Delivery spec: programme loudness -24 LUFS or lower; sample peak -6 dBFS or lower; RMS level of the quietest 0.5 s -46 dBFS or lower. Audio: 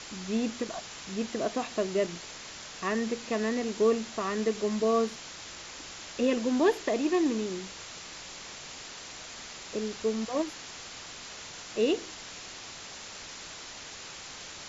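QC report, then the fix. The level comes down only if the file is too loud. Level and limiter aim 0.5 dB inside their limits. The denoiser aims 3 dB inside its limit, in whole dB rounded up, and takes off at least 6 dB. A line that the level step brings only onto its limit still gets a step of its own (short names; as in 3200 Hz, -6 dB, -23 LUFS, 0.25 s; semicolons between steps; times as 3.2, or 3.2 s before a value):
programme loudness -32.5 LUFS: OK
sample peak -14.0 dBFS: OK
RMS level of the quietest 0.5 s -44 dBFS: fail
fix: denoiser 6 dB, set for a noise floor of -44 dBFS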